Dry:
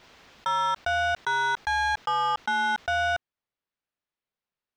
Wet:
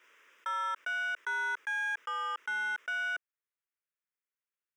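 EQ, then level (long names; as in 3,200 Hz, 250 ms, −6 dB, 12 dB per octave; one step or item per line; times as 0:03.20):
high-pass filter 420 Hz 24 dB per octave
phaser with its sweep stopped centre 1,800 Hz, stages 4
−4.0 dB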